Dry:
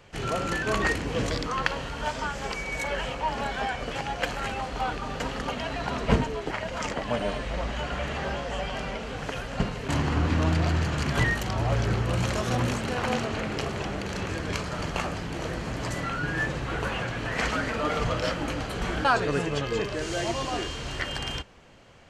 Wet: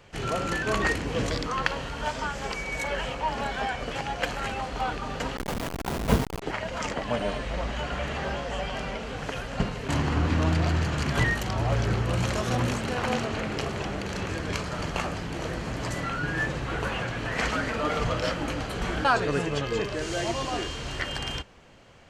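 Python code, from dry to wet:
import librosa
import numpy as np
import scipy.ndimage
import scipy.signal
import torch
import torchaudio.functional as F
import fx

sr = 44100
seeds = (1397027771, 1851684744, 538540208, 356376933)

y = fx.delta_hold(x, sr, step_db=-24.0, at=(5.37, 6.42))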